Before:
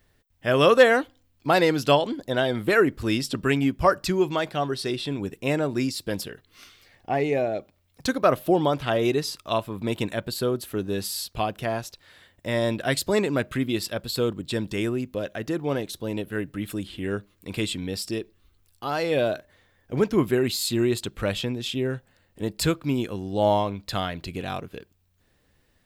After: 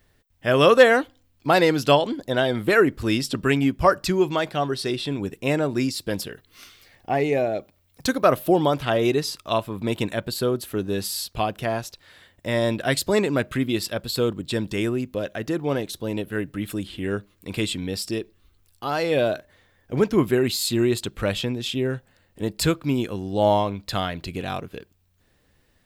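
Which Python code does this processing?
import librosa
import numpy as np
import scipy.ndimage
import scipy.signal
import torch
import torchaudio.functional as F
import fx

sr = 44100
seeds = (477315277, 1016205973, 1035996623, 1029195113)

y = fx.high_shelf(x, sr, hz=10000.0, db=6.5, at=(6.3, 8.85))
y = F.gain(torch.from_numpy(y), 2.0).numpy()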